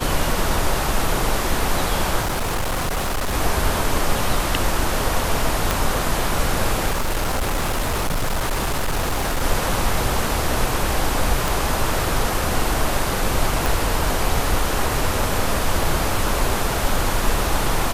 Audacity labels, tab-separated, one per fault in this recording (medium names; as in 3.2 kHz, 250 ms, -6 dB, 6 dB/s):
2.210000	3.350000	clipped -19 dBFS
5.710000	5.710000	pop
6.900000	9.440000	clipped -17.5 dBFS
11.480000	11.480000	pop
13.660000	13.660000	pop